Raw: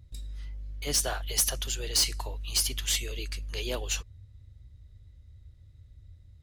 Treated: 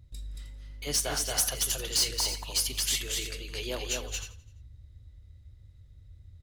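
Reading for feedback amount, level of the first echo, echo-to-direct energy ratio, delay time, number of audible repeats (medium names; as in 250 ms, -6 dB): no regular repeats, -15.5 dB, -2.5 dB, 43 ms, 6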